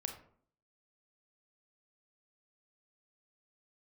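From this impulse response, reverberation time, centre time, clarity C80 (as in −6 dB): 0.55 s, 17 ms, 12.0 dB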